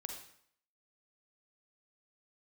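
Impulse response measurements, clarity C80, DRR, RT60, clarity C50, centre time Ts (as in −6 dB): 7.5 dB, 3.0 dB, 0.65 s, 4.5 dB, 30 ms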